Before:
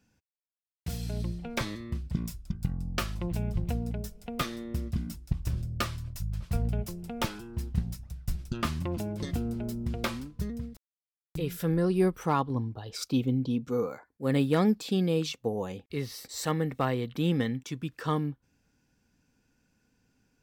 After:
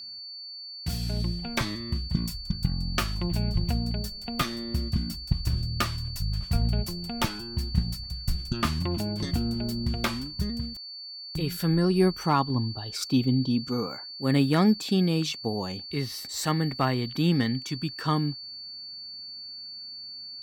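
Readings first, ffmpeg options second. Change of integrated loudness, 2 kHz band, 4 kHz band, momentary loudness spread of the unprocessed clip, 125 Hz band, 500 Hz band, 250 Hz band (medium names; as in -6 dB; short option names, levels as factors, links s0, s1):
+3.0 dB, +4.0 dB, +10.0 dB, 11 LU, +4.0 dB, 0.0 dB, +3.5 dB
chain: -af "equalizer=f=490:t=o:w=0.31:g=-10,aeval=exprs='val(0)+0.00794*sin(2*PI*4500*n/s)':c=same,volume=1.58"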